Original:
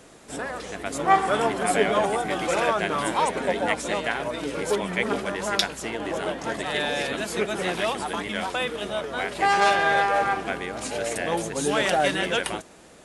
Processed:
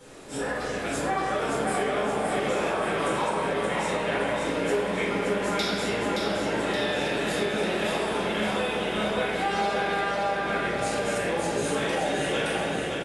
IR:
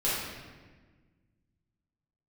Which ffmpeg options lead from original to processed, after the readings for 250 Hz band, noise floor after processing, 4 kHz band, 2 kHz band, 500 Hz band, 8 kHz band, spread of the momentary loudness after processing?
+1.0 dB, -30 dBFS, -2.0 dB, -2.5 dB, -0.5 dB, -3.5 dB, 1 LU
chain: -filter_complex "[1:a]atrim=start_sample=2205[s0];[0:a][s0]afir=irnorm=-1:irlink=0,acompressor=threshold=0.1:ratio=6,aecho=1:1:572|1144|1716|2288|2860|3432|4004:0.596|0.322|0.174|0.0938|0.0506|0.0274|0.0148,volume=0.531"

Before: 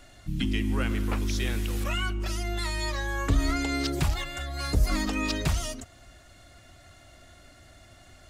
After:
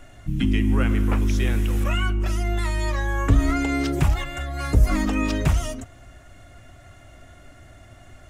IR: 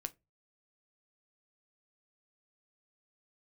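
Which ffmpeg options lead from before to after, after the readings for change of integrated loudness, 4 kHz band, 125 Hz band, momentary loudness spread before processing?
+6.0 dB, -1.5 dB, +7.5 dB, 6 LU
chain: -filter_complex "[0:a]asplit=2[s0][s1];[s1]lowpass=f=4600:w=0.5412,lowpass=f=4600:w=1.3066[s2];[1:a]atrim=start_sample=2205,lowshelf=f=170:g=6.5[s3];[s2][s3]afir=irnorm=-1:irlink=0,volume=1[s4];[s0][s4]amix=inputs=2:normalize=0"

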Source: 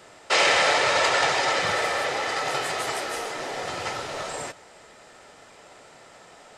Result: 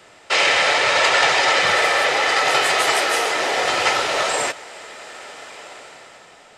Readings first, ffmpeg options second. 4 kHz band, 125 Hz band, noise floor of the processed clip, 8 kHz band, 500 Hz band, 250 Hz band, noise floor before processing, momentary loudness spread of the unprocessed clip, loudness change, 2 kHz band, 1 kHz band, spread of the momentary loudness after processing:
+7.5 dB, +0.5 dB, -48 dBFS, +6.5 dB, +5.5 dB, +4.5 dB, -50 dBFS, 13 LU, +7.0 dB, +7.5 dB, +6.0 dB, 21 LU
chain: -filter_complex "[0:a]equalizer=f=2600:w=1:g=4.5,acrossover=split=300[s0][s1];[s1]dynaudnorm=f=200:g=9:m=3.76[s2];[s0][s2]amix=inputs=2:normalize=0"

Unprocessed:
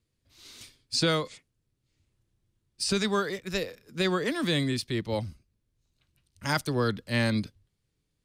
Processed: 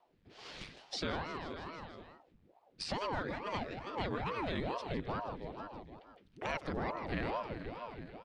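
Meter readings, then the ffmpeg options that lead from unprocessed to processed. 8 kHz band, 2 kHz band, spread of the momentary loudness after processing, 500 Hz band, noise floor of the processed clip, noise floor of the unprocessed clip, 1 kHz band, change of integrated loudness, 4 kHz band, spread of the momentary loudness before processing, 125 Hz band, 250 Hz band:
-18.0 dB, -9.5 dB, 14 LU, -9.0 dB, -69 dBFS, -79 dBFS, -2.5 dB, -11.0 dB, -13.0 dB, 14 LU, -11.5 dB, -11.5 dB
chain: -filter_complex "[0:a]asplit=2[s0][s1];[s1]aecho=0:1:159|318|477|636|795|954:0.266|0.146|0.0805|0.0443|0.0243|0.0134[s2];[s0][s2]amix=inputs=2:normalize=0,acrusher=bits=7:mode=log:mix=0:aa=0.000001,acrossover=split=150|1100[s3][s4][s5];[s4]asoftclip=type=hard:threshold=0.0447[s6];[s3][s6][s5]amix=inputs=3:normalize=0,lowpass=2500,acompressor=threshold=0.00398:ratio=3,aeval=exprs='val(0)*sin(2*PI*440*n/s+440*0.9/2.3*sin(2*PI*2.3*n/s))':c=same,volume=3.16"

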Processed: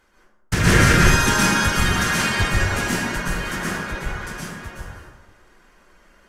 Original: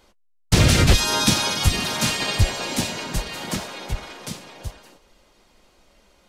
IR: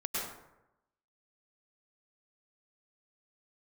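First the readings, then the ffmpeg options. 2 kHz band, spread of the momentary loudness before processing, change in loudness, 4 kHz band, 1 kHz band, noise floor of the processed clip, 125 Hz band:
+8.0 dB, 19 LU, +2.0 dB, -3.0 dB, +5.0 dB, -56 dBFS, +0.5 dB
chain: -filter_complex "[0:a]equalizer=f=630:t=o:w=0.67:g=-3,equalizer=f=1600:t=o:w=0.67:g=11,equalizer=f=4000:t=o:w=0.67:g=-6[s0];[1:a]atrim=start_sample=2205,asetrate=38367,aresample=44100[s1];[s0][s1]afir=irnorm=-1:irlink=0,volume=0.668"

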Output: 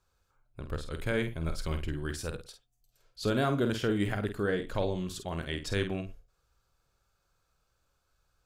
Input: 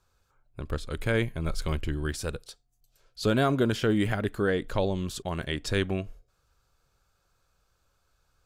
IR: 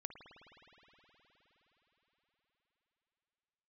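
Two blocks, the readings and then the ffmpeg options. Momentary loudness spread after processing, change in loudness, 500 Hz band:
11 LU, -4.0 dB, -3.5 dB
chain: -filter_complex "[0:a]asplit=2[s0][s1];[1:a]atrim=start_sample=2205,atrim=end_sample=3528,adelay=49[s2];[s1][s2]afir=irnorm=-1:irlink=0,volume=0.75[s3];[s0][s3]amix=inputs=2:normalize=0,volume=0.596"

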